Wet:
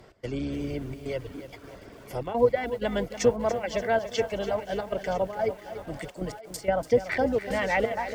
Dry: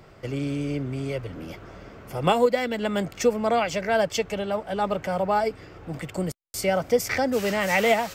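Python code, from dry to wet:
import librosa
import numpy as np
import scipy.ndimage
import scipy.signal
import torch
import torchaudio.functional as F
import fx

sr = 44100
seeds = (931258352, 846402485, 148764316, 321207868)

y = fx.octave_divider(x, sr, octaves=2, level_db=-4.0)
y = fx.graphic_eq_31(y, sr, hz=(160, 1250, 2500), db=(-5, -7, -5))
y = fx.dereverb_blind(y, sr, rt60_s=0.68)
y = fx.env_lowpass_down(y, sr, base_hz=2000.0, full_db=-19.5)
y = fx.low_shelf(y, sr, hz=99.0, db=-8.5)
y = fx.notch(y, sr, hz=820.0, q=23.0)
y = fx.echo_thinned(y, sr, ms=970, feedback_pct=43, hz=770.0, wet_db=-14.5)
y = fx.step_gate(y, sr, bpm=128, pattern='x.xxxxxx.xx', floor_db=-12.0, edge_ms=4.5)
y = fx.echo_crushed(y, sr, ms=289, feedback_pct=55, bits=8, wet_db=-11.5)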